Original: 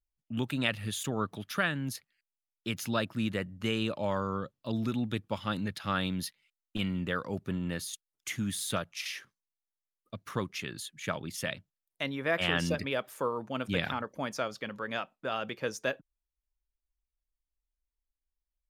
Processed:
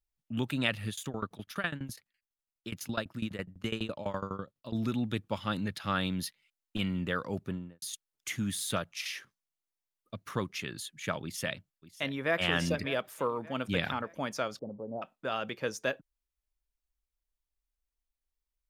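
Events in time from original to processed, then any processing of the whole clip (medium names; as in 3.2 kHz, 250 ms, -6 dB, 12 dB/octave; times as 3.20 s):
0.89–4.75 s: tremolo saw down 12 Hz, depth 95%
7.38–7.82 s: studio fade out
11.23–12.41 s: echo throw 590 ms, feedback 45%, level -15.5 dB
14.59–15.02 s: steep low-pass 810 Hz 48 dB/octave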